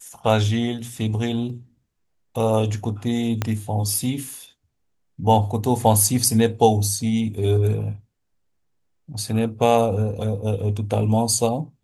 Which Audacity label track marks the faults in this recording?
3.420000	3.420000	pop -8 dBFS

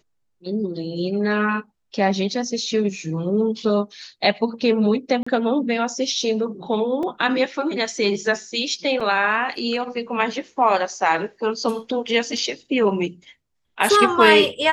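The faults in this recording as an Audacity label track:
5.230000	5.260000	dropout 35 ms
7.030000	7.030000	dropout 2.5 ms
9.000000	9.010000	dropout 5 ms
12.370000	12.370000	dropout 3.7 ms

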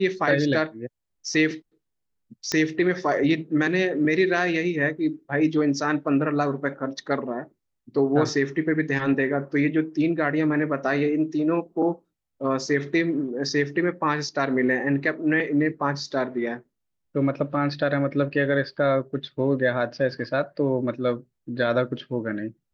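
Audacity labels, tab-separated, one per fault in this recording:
2.520000	2.520000	pop -11 dBFS

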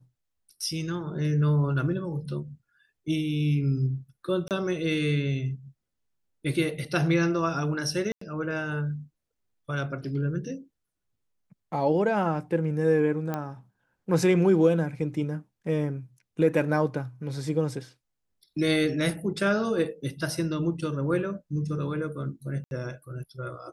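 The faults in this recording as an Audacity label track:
4.480000	4.510000	dropout 28 ms
8.120000	8.210000	dropout 94 ms
13.340000	13.340000	pop -17 dBFS
22.640000	22.710000	dropout 71 ms

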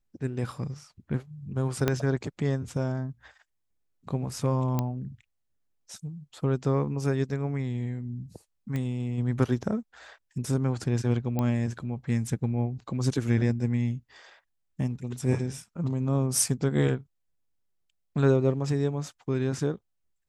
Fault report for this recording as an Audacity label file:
1.880000	1.880000	pop -10 dBFS
4.790000	4.790000	pop -14 dBFS
8.760000	8.760000	pop -20 dBFS
11.390000	11.390000	pop -16 dBFS

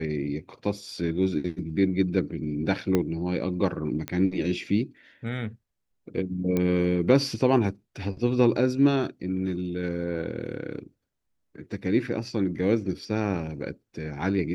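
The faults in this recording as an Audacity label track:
2.950000	2.950000	pop -11 dBFS
4.080000	4.080000	pop -15 dBFS
6.570000	6.570000	pop -14 dBFS

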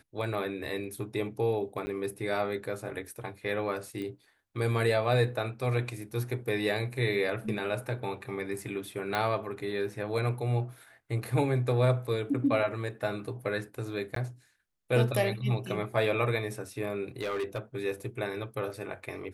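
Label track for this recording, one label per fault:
1.860000	1.870000	dropout 10 ms
4.020000	4.020000	pop -27 dBFS
9.150000	9.150000	pop -16 dBFS
14.150000	14.160000	dropout 13 ms
17.210000	17.590000	clipped -28 dBFS

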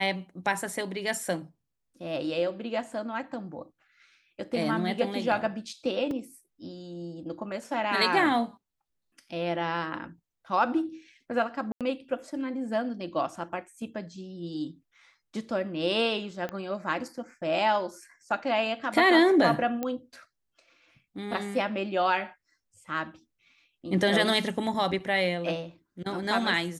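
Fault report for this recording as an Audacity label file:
6.110000	6.110000	dropout 2.3 ms
11.720000	11.810000	dropout 87 ms
16.490000	16.490000	pop -21 dBFS
19.830000	19.830000	pop -17 dBFS

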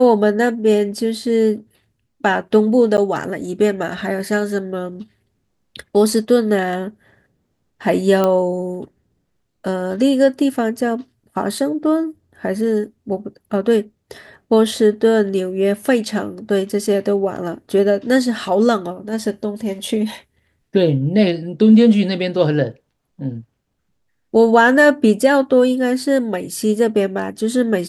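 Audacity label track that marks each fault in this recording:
2.970000	2.980000	dropout 9.7 ms
8.240000	8.240000	pop -6 dBFS

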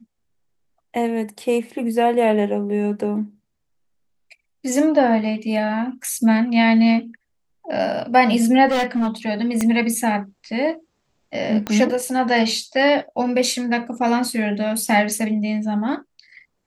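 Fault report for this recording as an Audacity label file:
8.670000	9.080000	clipped -16.5 dBFS
9.610000	9.610000	pop -8 dBFS
11.670000	11.670000	pop -10 dBFS

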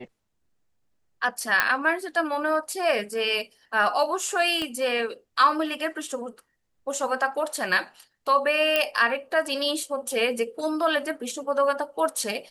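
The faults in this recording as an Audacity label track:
1.600000	1.600000	pop -5 dBFS
4.620000	4.620000	pop -16 dBFS
8.760000	8.760000	pop -8 dBFS

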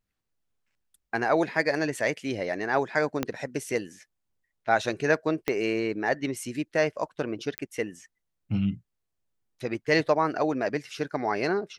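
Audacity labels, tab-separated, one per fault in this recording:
3.230000	3.230000	pop -12 dBFS
5.480000	5.480000	pop -12 dBFS
7.580000	7.580000	pop -13 dBFS

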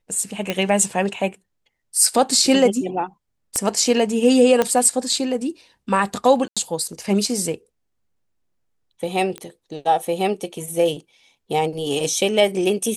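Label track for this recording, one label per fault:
0.500000	0.500000	pop -8 dBFS
3.560000	3.560000	pop -10 dBFS
4.620000	4.620000	pop -5 dBFS
6.480000	6.570000	dropout 86 ms
9.380000	9.380000	pop -17 dBFS

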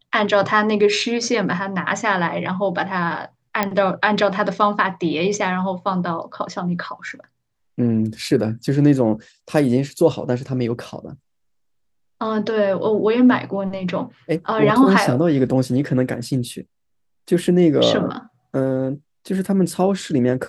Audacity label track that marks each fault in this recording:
3.630000	3.630000	pop -5 dBFS

